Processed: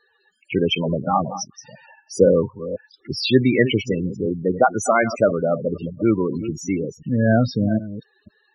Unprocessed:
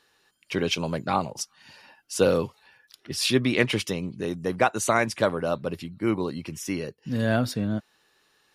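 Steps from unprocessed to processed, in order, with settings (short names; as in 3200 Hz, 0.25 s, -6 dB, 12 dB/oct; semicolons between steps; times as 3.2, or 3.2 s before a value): reverse delay 0.251 s, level -12 dB; loudest bins only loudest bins 16; gain +7 dB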